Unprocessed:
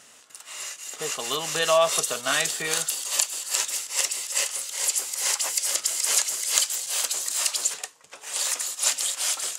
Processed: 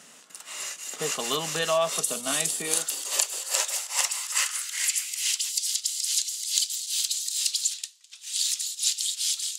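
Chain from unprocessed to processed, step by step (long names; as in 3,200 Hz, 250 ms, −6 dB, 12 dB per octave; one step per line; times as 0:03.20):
0:02.04–0:02.79: graphic EQ with 15 bands 250 Hz +4 dB, 1,600 Hz −7 dB, 10,000 Hz +10 dB
high-pass filter sweep 180 Hz → 3,800 Hz, 0:02.47–0:05.54
speech leveller within 4 dB 0.5 s
level −3.5 dB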